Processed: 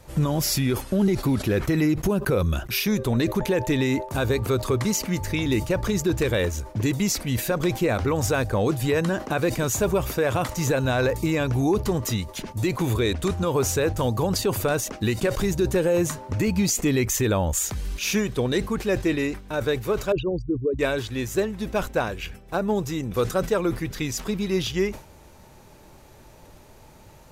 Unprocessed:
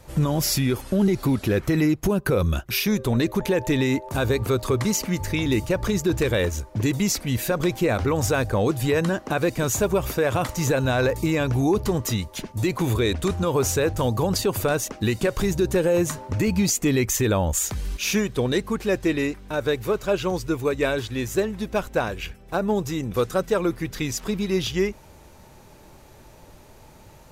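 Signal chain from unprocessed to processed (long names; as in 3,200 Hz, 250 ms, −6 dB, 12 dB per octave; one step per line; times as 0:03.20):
0:20.12–0:20.79: spectral envelope exaggerated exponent 3
level that may fall only so fast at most 140 dB per second
level −1 dB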